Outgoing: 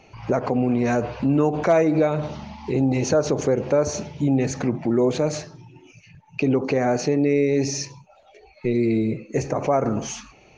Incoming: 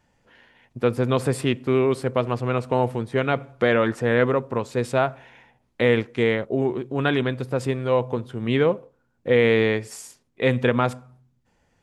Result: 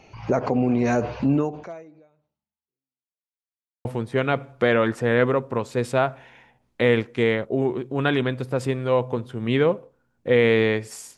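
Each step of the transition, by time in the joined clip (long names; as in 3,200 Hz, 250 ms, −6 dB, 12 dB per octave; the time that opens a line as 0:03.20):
outgoing
0:01.34–0:03.26: fade out exponential
0:03.26–0:03.85: silence
0:03.85: continue with incoming from 0:02.85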